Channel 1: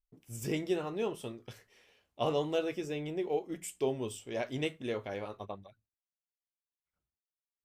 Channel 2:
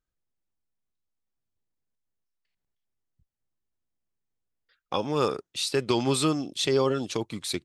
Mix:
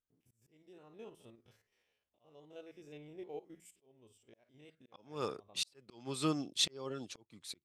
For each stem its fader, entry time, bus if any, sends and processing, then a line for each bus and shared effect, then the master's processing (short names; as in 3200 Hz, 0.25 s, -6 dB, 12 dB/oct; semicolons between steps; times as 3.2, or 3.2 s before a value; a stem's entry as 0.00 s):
-6.0 dB, 0.00 s, no send, stepped spectrum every 50 ms
-1.0 dB, 0.00 s, no send, HPF 63 Hz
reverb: off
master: auto swell 0.767 s; upward expander 1.5:1, over -45 dBFS